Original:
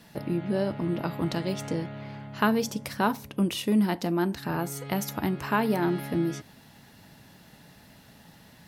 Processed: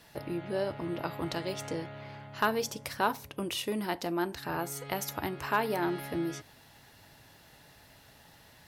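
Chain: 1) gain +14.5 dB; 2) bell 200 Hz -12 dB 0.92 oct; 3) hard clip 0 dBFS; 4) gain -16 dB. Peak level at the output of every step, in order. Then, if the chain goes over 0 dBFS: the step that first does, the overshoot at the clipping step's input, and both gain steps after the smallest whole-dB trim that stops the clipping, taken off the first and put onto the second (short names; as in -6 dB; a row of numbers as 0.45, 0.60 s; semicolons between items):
+4.0, +5.0, 0.0, -16.0 dBFS; step 1, 5.0 dB; step 1 +9.5 dB, step 4 -11 dB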